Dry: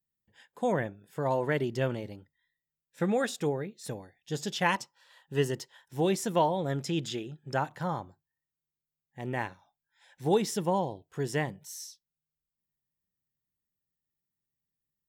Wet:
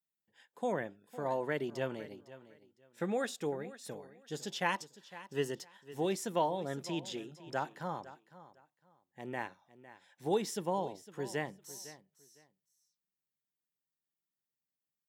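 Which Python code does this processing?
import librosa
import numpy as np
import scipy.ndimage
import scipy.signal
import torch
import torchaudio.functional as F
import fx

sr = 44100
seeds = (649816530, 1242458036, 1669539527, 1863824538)

p1 = scipy.signal.sosfilt(scipy.signal.butter(2, 190.0, 'highpass', fs=sr, output='sos'), x)
p2 = p1 + fx.echo_feedback(p1, sr, ms=506, feedback_pct=22, wet_db=-16.5, dry=0)
y = F.gain(torch.from_numpy(p2), -5.5).numpy()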